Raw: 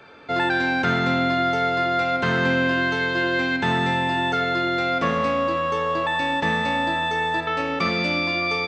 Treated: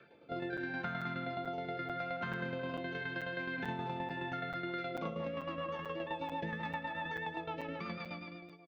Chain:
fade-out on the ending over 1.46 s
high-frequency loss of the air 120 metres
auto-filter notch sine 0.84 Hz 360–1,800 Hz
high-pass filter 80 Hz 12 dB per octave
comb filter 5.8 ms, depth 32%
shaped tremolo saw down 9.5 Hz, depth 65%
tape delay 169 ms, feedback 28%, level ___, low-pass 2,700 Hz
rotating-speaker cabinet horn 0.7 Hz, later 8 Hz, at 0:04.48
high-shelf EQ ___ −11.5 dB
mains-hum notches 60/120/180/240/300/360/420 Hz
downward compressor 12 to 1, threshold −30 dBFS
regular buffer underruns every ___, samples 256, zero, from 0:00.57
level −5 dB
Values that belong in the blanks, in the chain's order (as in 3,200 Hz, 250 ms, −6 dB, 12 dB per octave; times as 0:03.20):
−7.5 dB, 6,200 Hz, 0.44 s